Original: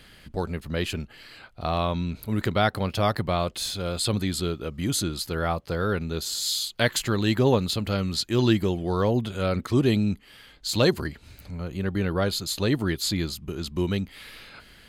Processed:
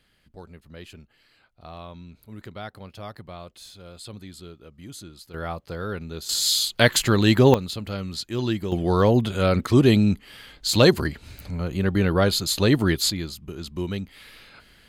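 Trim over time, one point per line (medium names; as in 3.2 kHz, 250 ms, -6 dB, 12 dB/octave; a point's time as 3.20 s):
-14.5 dB
from 5.34 s -5 dB
from 6.29 s +5.5 dB
from 7.54 s -4.5 dB
from 8.72 s +5 dB
from 13.10 s -3 dB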